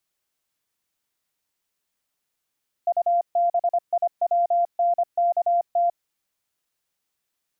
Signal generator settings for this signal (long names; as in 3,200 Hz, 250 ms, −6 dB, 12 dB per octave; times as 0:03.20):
Morse code "UBIWNKT" 25 words per minute 693 Hz −17 dBFS